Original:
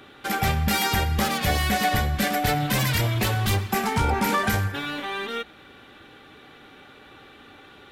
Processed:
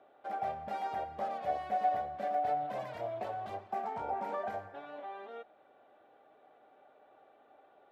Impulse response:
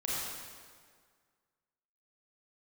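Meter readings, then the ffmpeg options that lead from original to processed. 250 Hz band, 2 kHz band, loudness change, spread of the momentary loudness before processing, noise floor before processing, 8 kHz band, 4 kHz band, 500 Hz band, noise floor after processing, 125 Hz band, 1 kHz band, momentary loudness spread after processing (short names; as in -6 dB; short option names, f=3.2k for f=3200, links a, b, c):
-23.0 dB, -23.0 dB, -13.0 dB, 8 LU, -49 dBFS, under -35 dB, -30.0 dB, -7.5 dB, -64 dBFS, -30.5 dB, -7.5 dB, 13 LU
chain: -af "bandpass=f=660:t=q:w=6.1:csg=0"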